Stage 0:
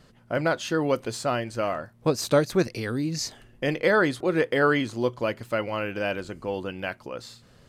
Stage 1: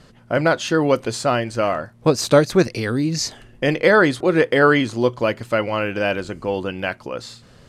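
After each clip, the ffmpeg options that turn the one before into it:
-af "lowpass=11000,volume=2.24"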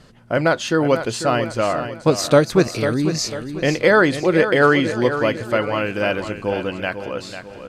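-af "aecho=1:1:496|992|1488|1984:0.316|0.133|0.0558|0.0234"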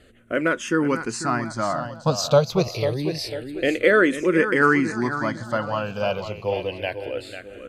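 -filter_complex "[0:a]asplit=2[s0][s1];[s1]afreqshift=-0.27[s2];[s0][s2]amix=inputs=2:normalize=1,volume=0.891"

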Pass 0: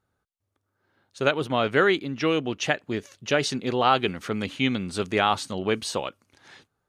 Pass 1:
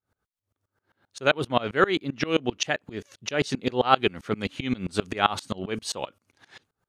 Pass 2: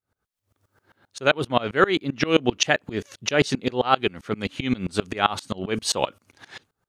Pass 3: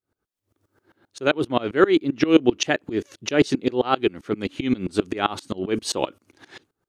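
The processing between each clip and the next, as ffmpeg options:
-af "aeval=exprs='val(0)*pow(10,-26*if(lt(mod(-7.6*n/s,1),2*abs(-7.6)/1000),1-mod(-7.6*n/s,1)/(2*abs(-7.6)/1000),(mod(-7.6*n/s,1)-2*abs(-7.6)/1000)/(1-2*abs(-7.6)/1000))/20)':c=same,volume=2.11"
-af "dynaudnorm=f=140:g=7:m=5.62,volume=0.891"
-af "equalizer=f=330:w=1.8:g=10.5,volume=0.708"

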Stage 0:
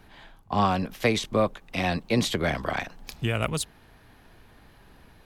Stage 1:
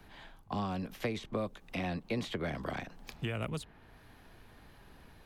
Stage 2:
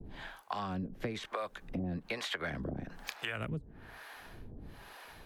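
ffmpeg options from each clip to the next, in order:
-filter_complex "[0:a]acrossover=split=100|450|3000[s0][s1][s2][s3];[s0]acompressor=threshold=0.00447:ratio=4[s4];[s1]acompressor=threshold=0.0224:ratio=4[s5];[s2]acompressor=threshold=0.0141:ratio=4[s6];[s3]acompressor=threshold=0.00282:ratio=4[s7];[s4][s5][s6][s7]amix=inputs=4:normalize=0,volume=0.708"
-filter_complex "[0:a]adynamicequalizer=threshold=0.00112:dfrequency=1600:dqfactor=2.2:tfrequency=1600:tqfactor=2.2:attack=5:release=100:ratio=0.375:range=4:mode=boostabove:tftype=bell,acrossover=split=510[s0][s1];[s0]aeval=exprs='val(0)*(1-1/2+1/2*cos(2*PI*1.1*n/s))':c=same[s2];[s1]aeval=exprs='val(0)*(1-1/2-1/2*cos(2*PI*1.1*n/s))':c=same[s3];[s2][s3]amix=inputs=2:normalize=0,acompressor=threshold=0.00355:ratio=2.5,volume=3.55"

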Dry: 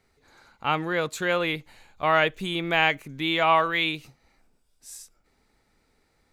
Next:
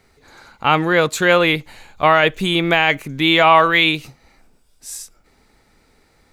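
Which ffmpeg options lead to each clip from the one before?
-af "alimiter=level_in=3.98:limit=0.891:release=50:level=0:latency=1,volume=0.891"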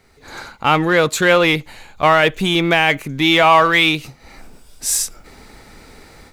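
-filter_complex "[0:a]dynaudnorm=f=190:g=3:m=4.47,asplit=2[s0][s1];[s1]asoftclip=type=hard:threshold=0.15,volume=0.531[s2];[s0][s2]amix=inputs=2:normalize=0,volume=0.75"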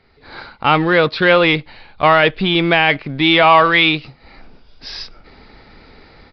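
-filter_complex "[0:a]asplit=2[s0][s1];[s1]acrusher=bits=3:mix=0:aa=0.5,volume=0.282[s2];[s0][s2]amix=inputs=2:normalize=0,aresample=11025,aresample=44100,volume=0.891"

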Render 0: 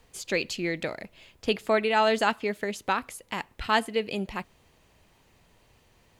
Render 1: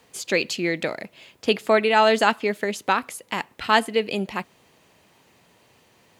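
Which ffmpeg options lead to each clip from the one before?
-af "highpass=150,volume=1.88"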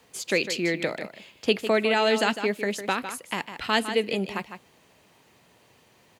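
-filter_complex "[0:a]aecho=1:1:153:0.282,acrossover=split=630|1600[s0][s1][s2];[s1]acompressor=threshold=0.0251:ratio=6[s3];[s0][s3][s2]amix=inputs=3:normalize=0,volume=0.841"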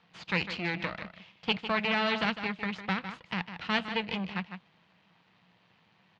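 -af "aeval=exprs='max(val(0),0)':c=same,highpass=100,equalizer=f=180:t=q:w=4:g=10,equalizer=f=260:t=q:w=4:g=-7,equalizer=f=400:t=q:w=4:g=-10,equalizer=f=570:t=q:w=4:g=-6,lowpass=f=4000:w=0.5412,lowpass=f=4000:w=1.3066"

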